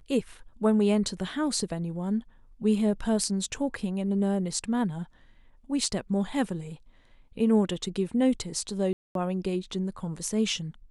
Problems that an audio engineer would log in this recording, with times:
8.93–9.15 gap 0.222 s

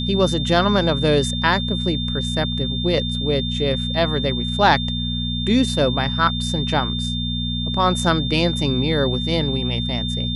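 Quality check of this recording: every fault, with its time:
hum 60 Hz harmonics 4 -25 dBFS
tone 3600 Hz -26 dBFS

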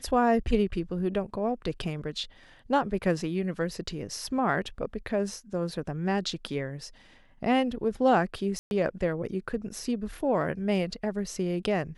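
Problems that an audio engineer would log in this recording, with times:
8.59–8.71 gap 0.121 s

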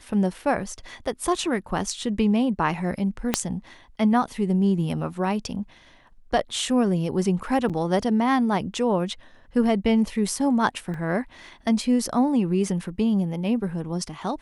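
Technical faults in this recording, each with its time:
3.34 pop -4 dBFS
7.69–7.7 gap 7.3 ms
10.94 gap 2.5 ms

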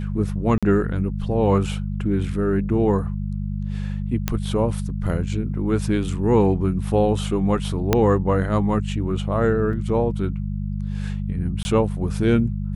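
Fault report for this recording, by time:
hum 50 Hz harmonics 4 -26 dBFS
0.58–0.63 gap 46 ms
4.28 pop -7 dBFS
7.93 pop -3 dBFS
9.73 gap 2.8 ms
11.63–11.65 gap 20 ms

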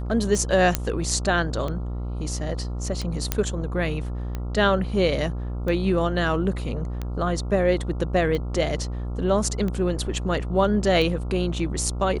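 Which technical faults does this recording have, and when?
buzz 60 Hz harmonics 23 -29 dBFS
tick 45 rpm
0.75 pop -4 dBFS
3.32 pop -5 dBFS

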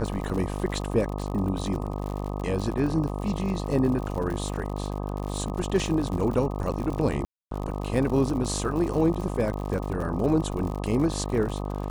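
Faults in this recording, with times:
buzz 50 Hz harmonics 25 -31 dBFS
crackle 86/s -32 dBFS
7.25–7.51 gap 0.263 s

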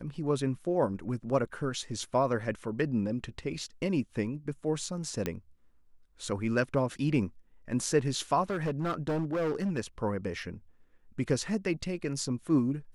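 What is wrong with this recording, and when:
5.26 pop -16 dBFS
8.42–9.79 clipped -26.5 dBFS

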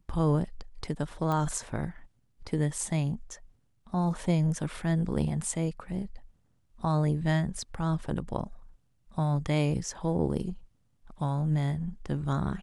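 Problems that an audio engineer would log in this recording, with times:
1.32 pop -19 dBFS

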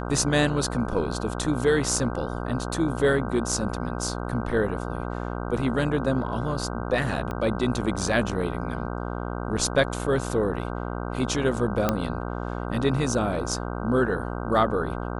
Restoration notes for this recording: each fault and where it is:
buzz 60 Hz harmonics 26 -31 dBFS
7.31 pop -19 dBFS
11.89 pop -8 dBFS

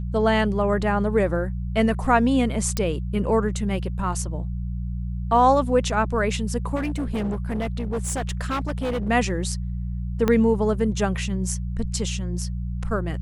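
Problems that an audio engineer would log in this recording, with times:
hum 60 Hz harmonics 3 -28 dBFS
2.77 pop -9 dBFS
6.75–9.1 clipped -22 dBFS
10.28 pop -8 dBFS

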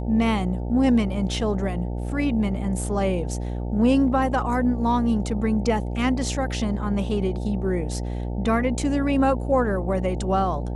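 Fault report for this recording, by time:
buzz 60 Hz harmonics 15 -28 dBFS

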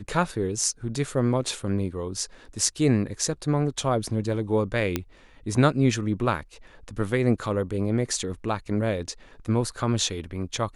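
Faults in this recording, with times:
4.96 pop -10 dBFS

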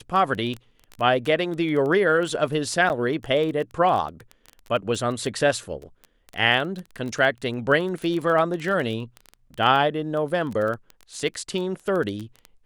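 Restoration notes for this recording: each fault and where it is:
crackle 14/s -27 dBFS
2.89–2.9 gap 9.4 ms

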